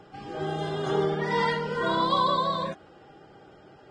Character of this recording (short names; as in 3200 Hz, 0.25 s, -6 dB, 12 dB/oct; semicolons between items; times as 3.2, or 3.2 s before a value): Vorbis